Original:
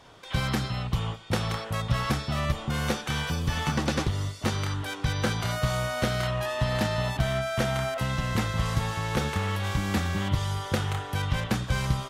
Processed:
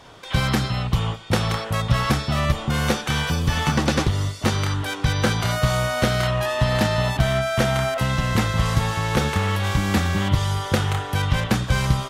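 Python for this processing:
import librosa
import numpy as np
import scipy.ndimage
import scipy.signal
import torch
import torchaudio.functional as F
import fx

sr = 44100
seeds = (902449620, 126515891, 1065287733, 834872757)

y = x * librosa.db_to_amplitude(6.5)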